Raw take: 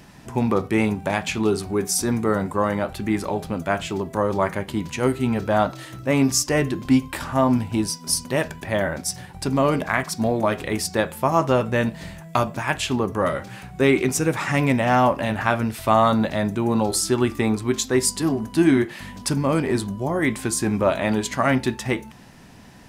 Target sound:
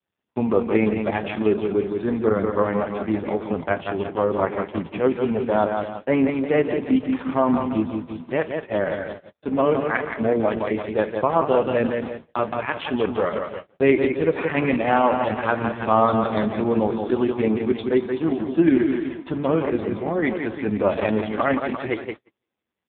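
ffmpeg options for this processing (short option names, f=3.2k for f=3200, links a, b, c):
-af "adynamicequalizer=threshold=0.01:dfrequency=460:dqfactor=5.8:tfrequency=460:tqfactor=5.8:attack=5:release=100:ratio=0.375:range=3.5:mode=boostabove:tftype=bell,aecho=1:1:171|342|513|684|855|1026|1197:0.531|0.287|0.155|0.0836|0.0451|0.0244|0.0132,agate=range=-46dB:threshold=-26dB:ratio=16:detection=peak,equalizer=f=130:t=o:w=0.35:g=-12.5" -ar 8000 -c:a libopencore_amrnb -b:a 4750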